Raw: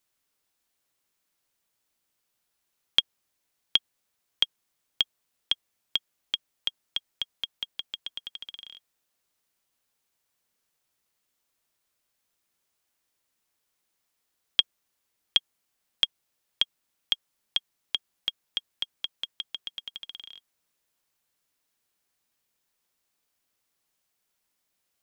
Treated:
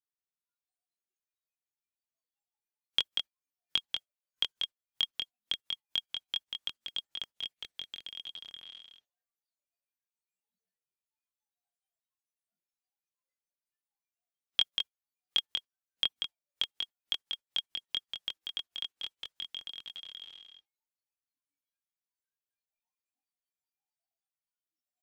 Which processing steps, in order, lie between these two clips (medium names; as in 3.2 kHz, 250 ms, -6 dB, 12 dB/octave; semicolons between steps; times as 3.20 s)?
delay 189 ms -5 dB; chorus voices 2, 0.28 Hz, delay 23 ms, depth 1.4 ms; spectral noise reduction 20 dB; trim -2 dB